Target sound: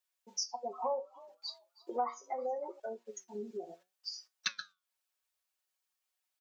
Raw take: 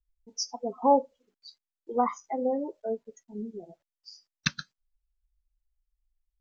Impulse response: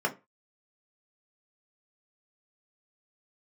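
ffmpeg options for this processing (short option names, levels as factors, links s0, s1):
-filter_complex "[0:a]highpass=600,bandreject=f=2000:w=25,aecho=1:1:5.4:0.8,acompressor=threshold=0.00447:ratio=3,flanger=delay=8:depth=4.6:regen=75:speed=0.7:shape=sinusoidal,asettb=1/sr,asplit=3[s0][s1][s2];[s0]atrim=end=0.604[s3];[s1]atrim=start=0.6:end=2.8,asetpts=PTS-STARTPTS,afade=t=in:d=0.004:c=qsin,afade=t=out:st=2.196:d=0.004:c=qsin,asplit=4[s4][s5][s6][s7];[s5]adelay=320,afreqshift=47,volume=0.0891[s8];[s6]adelay=640,afreqshift=94,volume=0.032[s9];[s7]adelay=960,afreqshift=141,volume=0.0116[s10];[s4][s8][s9][s10]amix=inputs=4:normalize=0,atrim=end_sample=97020[s11];[s2]atrim=start=2.796[s12];[s3][s11]acrossfade=d=0.004:c1=hsin:c2=qsin[s13];[s13][s12]acrossfade=d=0.004:c1=qsin:c2=hsin,volume=4.22"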